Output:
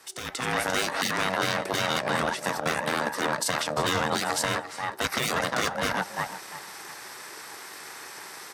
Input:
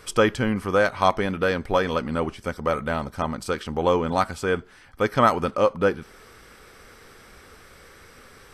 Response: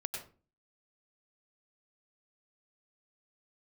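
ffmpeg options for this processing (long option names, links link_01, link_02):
-filter_complex "[0:a]asplit=2[link_01][link_02];[link_02]adelay=347,lowpass=frequency=4500:poles=1,volume=-12dB,asplit=2[link_03][link_04];[link_04]adelay=347,lowpass=frequency=4500:poles=1,volume=0.21,asplit=2[link_05][link_06];[link_06]adelay=347,lowpass=frequency=4500:poles=1,volume=0.21[link_07];[link_01][link_03][link_05][link_07]amix=inputs=4:normalize=0,asplit=2[link_08][link_09];[link_09]acrusher=bits=3:mix=0:aa=0.5,volume=-12dB[link_10];[link_08][link_10]amix=inputs=2:normalize=0,tiltshelf=frequency=1300:gain=-4.5,aeval=exprs='val(0)*sin(2*PI*360*n/s)':channel_layout=same,highpass=frequency=500:poles=1,afftfilt=real='re*lt(hypot(re,im),0.1)':imag='im*lt(hypot(re,im),0.1)':win_size=1024:overlap=0.75,afreqshift=18,equalizer=frequency=2800:width_type=o:width=0.74:gain=-6,alimiter=level_in=1dB:limit=-24dB:level=0:latency=1:release=73,volume=-1dB,dynaudnorm=framelen=120:gausssize=7:maxgain=11.5dB"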